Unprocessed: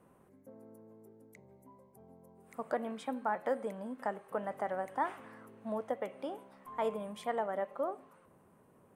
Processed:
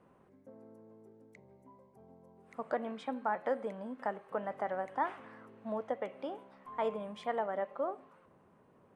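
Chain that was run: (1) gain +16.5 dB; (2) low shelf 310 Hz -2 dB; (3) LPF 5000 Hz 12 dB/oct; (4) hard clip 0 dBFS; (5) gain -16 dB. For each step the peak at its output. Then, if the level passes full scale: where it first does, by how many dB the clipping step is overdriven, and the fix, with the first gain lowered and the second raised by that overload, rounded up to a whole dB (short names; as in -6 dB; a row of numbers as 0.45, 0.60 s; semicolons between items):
-3.5, -3.5, -3.5, -3.5, -19.5 dBFS; no overload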